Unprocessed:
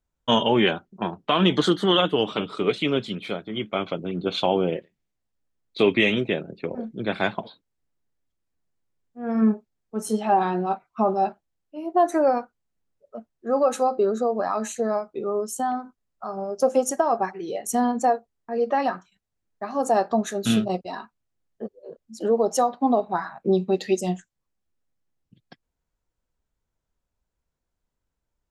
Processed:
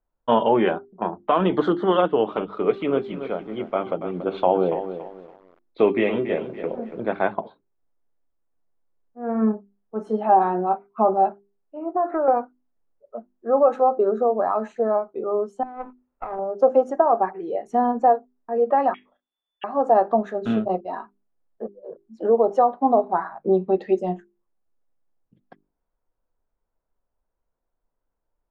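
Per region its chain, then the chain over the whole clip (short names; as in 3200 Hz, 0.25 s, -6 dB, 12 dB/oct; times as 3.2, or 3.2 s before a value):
2.46–7.09 de-hum 391.7 Hz, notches 32 + lo-fi delay 0.283 s, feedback 35%, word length 7-bit, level -10 dB
11.79–12.28 LPF 2700 Hz 24 dB/oct + bell 1300 Hz +12 dB 0.37 oct + compressor 5:1, threshold -22 dBFS
15.63–16.39 negative-ratio compressor -35 dBFS + comb 2.2 ms, depth 38% + running maximum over 9 samples
18.94–19.64 doubler 31 ms -10 dB + inverted band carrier 3500 Hz
whole clip: LPF 1000 Hz 12 dB/oct; bell 100 Hz -13 dB 3 oct; notches 50/100/150/200/250/300/350/400 Hz; gain +7 dB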